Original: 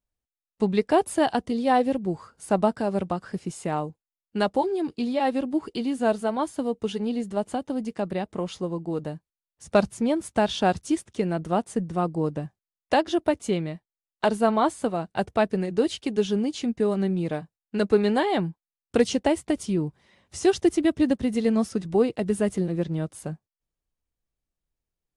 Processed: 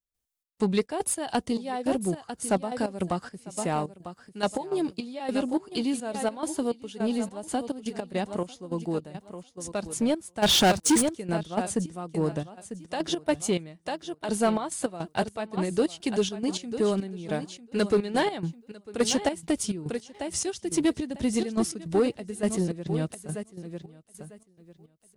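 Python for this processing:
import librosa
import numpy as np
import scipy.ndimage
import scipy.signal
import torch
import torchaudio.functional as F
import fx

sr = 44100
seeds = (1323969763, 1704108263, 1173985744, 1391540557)

p1 = fx.high_shelf(x, sr, hz=4000.0, db=10.0)
p2 = p1 + fx.echo_feedback(p1, sr, ms=948, feedback_pct=20, wet_db=-12, dry=0)
p3 = fx.step_gate(p2, sr, bpm=105, pattern='.xx.xx.x.xx.', floor_db=-12.0, edge_ms=4.5)
p4 = 10.0 ** (-15.0 / 20.0) * np.tanh(p3 / 10.0 ** (-15.0 / 20.0))
y = fx.leveller(p4, sr, passes=3, at=(10.42, 11.09))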